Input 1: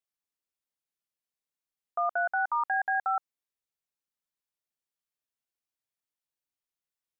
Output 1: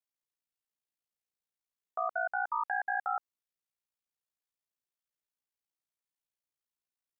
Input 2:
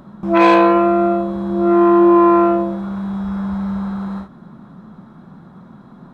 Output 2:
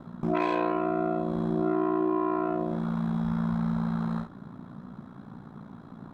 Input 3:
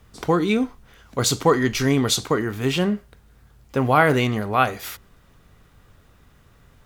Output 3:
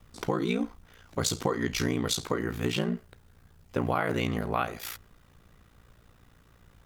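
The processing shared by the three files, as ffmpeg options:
-af "acompressor=threshold=-20dB:ratio=6,aeval=exprs='val(0)*sin(2*PI*29*n/s)':c=same,volume=-1.5dB"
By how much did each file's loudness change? -4.5, -13.5, -9.5 LU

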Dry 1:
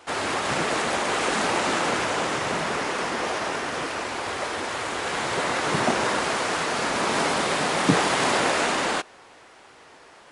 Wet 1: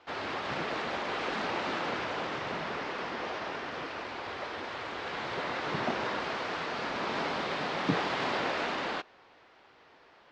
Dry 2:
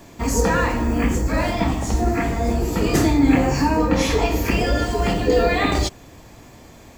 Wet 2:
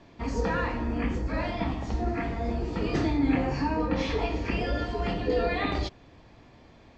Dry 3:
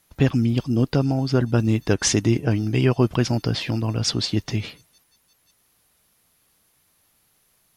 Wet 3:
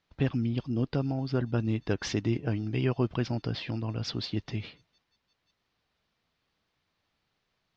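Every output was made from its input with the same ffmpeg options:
-af "lowpass=f=4.7k:w=0.5412,lowpass=f=4.7k:w=1.3066,volume=-9dB"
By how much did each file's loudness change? -9.5, -9.0, -9.5 LU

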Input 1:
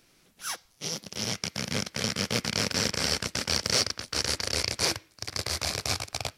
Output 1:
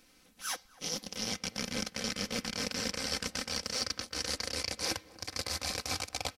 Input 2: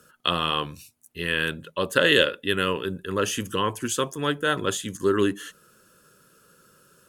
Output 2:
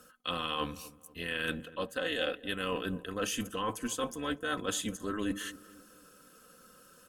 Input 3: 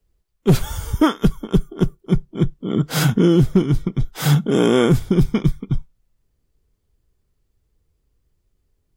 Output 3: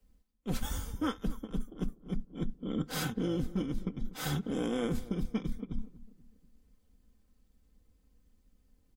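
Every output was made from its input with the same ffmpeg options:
-filter_complex "[0:a]aecho=1:1:3.9:0.62,areverse,acompressor=threshold=-29dB:ratio=6,areverse,tremolo=f=220:d=0.462,asplit=2[a][b];[b]adelay=243,lowpass=f=1k:p=1,volume=-17dB,asplit=2[c][d];[d]adelay=243,lowpass=f=1k:p=1,volume=0.46,asplit=2[e][f];[f]adelay=243,lowpass=f=1k:p=1,volume=0.46,asplit=2[g][h];[h]adelay=243,lowpass=f=1k:p=1,volume=0.46[i];[a][c][e][g][i]amix=inputs=5:normalize=0"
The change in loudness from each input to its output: -6.5, -10.5, -17.5 LU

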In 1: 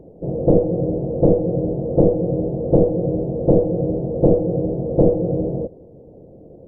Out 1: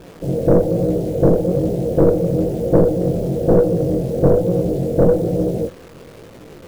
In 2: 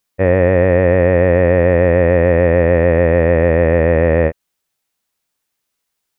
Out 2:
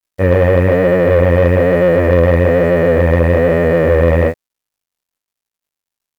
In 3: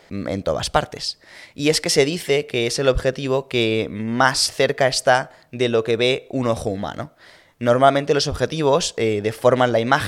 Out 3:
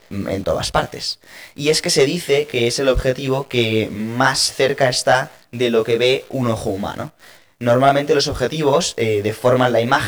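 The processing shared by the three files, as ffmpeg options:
-af "acrusher=bits=8:dc=4:mix=0:aa=0.000001,flanger=delay=16.5:depth=7.4:speed=1.1,acontrast=72,volume=-1dB"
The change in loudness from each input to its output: +2.0, +1.0, +2.0 LU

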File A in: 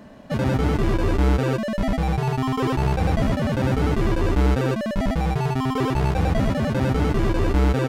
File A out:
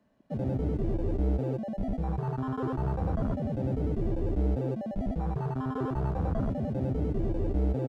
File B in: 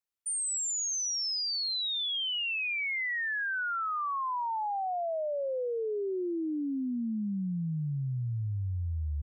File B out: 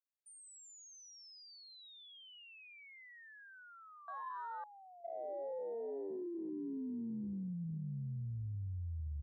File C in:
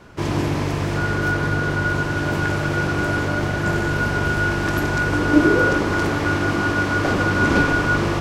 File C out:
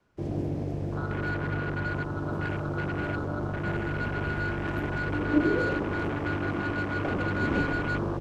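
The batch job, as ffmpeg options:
-filter_complex "[0:a]afwtdn=0.0794,acrossover=split=110|830|1800[a][b][c][d];[c]asoftclip=type=tanh:threshold=-26.5dB[e];[a][b][e][d]amix=inputs=4:normalize=0,aresample=32000,aresample=44100,volume=-8.5dB"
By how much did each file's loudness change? -9.0, -14.0, -10.0 LU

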